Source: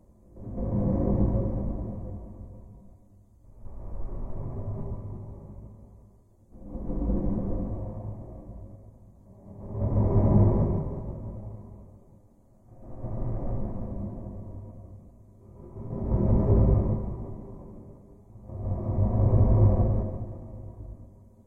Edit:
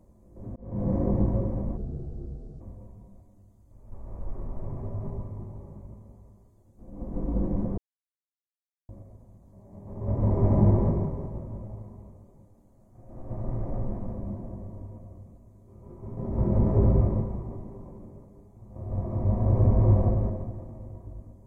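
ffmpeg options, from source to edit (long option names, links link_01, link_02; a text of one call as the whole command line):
ffmpeg -i in.wav -filter_complex "[0:a]asplit=6[link_01][link_02][link_03][link_04][link_05][link_06];[link_01]atrim=end=0.56,asetpts=PTS-STARTPTS,afade=type=out:start_time=0.556:duration=0.004:curve=hsin[link_07];[link_02]atrim=start=0.56:end=1.774,asetpts=PTS-STARTPTS,afade=type=in:duration=0.35[link_08];[link_03]atrim=start=1.77:end=2.34,asetpts=PTS-STARTPTS,asetrate=29988,aresample=44100,atrim=end_sample=36966,asetpts=PTS-STARTPTS[link_09];[link_04]atrim=start=2.336:end=7.51,asetpts=PTS-STARTPTS,afade=type=out:start_time=5.17:duration=0.004:curve=hsin[link_10];[link_05]atrim=start=7.51:end=8.62,asetpts=PTS-STARTPTS,volume=0[link_11];[link_06]atrim=start=8.62,asetpts=PTS-STARTPTS,afade=type=in:duration=0.004:curve=hsin[link_12];[link_07][link_08]concat=n=2:v=0:a=1[link_13];[link_13][link_09]acrossfade=duration=0.004:curve1=hsin:curve2=hsin[link_14];[link_10][link_11][link_12]concat=n=3:v=0:a=1[link_15];[link_14][link_15]acrossfade=duration=0.004:curve1=hsin:curve2=hsin" out.wav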